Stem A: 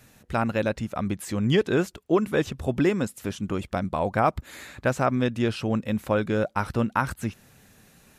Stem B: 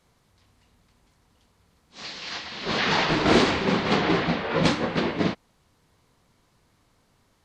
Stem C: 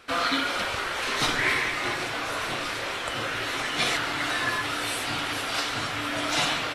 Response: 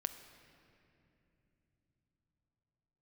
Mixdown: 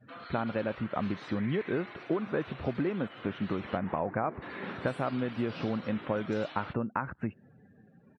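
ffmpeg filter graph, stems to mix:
-filter_complex "[0:a]volume=1.5dB[a];[1:a]adelay=950,volume=-17.5dB[b];[2:a]highshelf=f=3.9k:g=-4,alimiter=limit=-22dB:level=0:latency=1:release=39,volume=-15.5dB,asplit=3[c][d][e];[c]atrim=end=3.77,asetpts=PTS-STARTPTS,afade=t=out:st=3.766:d=0.004:c=hsin[f];[d]atrim=start=3.77:end=4.42,asetpts=PTS-STARTPTS,volume=0[g];[e]atrim=start=4.42,asetpts=PTS-STARTPTS,afade=t=in:d=0.004:c=hsin[h];[f][g][h]concat=n=3:v=0:a=1[i];[a][b]amix=inputs=2:normalize=0,lowpass=2k,acompressor=threshold=-27dB:ratio=8,volume=0dB[j];[i][j]amix=inputs=2:normalize=0,highpass=120,afftdn=nr=24:nf=-53"

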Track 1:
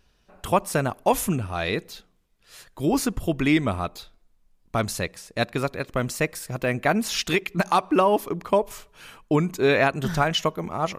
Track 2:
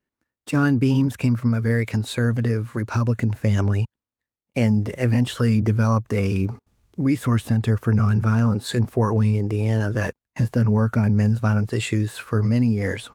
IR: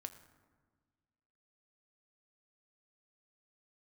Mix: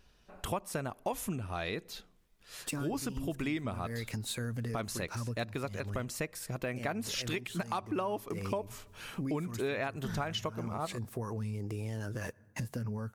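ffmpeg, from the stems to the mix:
-filter_complex "[0:a]volume=-1dB,asplit=2[a][b];[1:a]alimiter=limit=-16.5dB:level=0:latency=1:release=237,highshelf=f=4.5k:g=11.5,adelay=2200,volume=-6dB,asplit=2[c][d];[d]volume=-13.5dB[e];[b]apad=whole_len=676557[f];[c][f]sidechaincompress=threshold=-26dB:ratio=8:attack=6.9:release=292[g];[2:a]atrim=start_sample=2205[h];[e][h]afir=irnorm=-1:irlink=0[i];[a][g][i]amix=inputs=3:normalize=0,acompressor=threshold=-36dB:ratio=3"

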